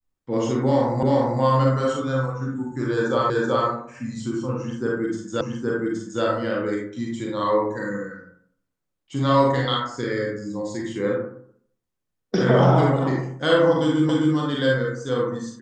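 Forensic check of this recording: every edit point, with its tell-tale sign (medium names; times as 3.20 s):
1.03 s: repeat of the last 0.39 s
3.30 s: repeat of the last 0.38 s
5.41 s: repeat of the last 0.82 s
14.09 s: repeat of the last 0.26 s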